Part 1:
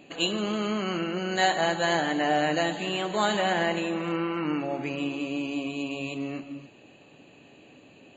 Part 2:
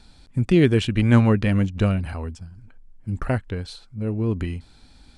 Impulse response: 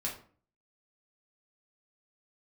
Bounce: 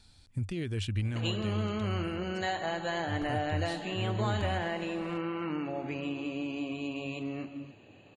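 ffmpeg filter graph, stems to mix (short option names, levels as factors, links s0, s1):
-filter_complex "[0:a]highshelf=f=6700:g=-10.5,acompressor=threshold=0.0355:ratio=2.5,adelay=1050,volume=0.708[s0];[1:a]highshelf=f=2400:g=9.5,alimiter=limit=0.178:level=0:latency=1:release=152,volume=0.562,afade=t=out:st=1.01:d=0.56:silence=0.354813,afade=t=in:st=3.11:d=0.21:silence=0.421697[s1];[s0][s1]amix=inputs=2:normalize=0,equalizer=f=96:w=3.5:g=14.5"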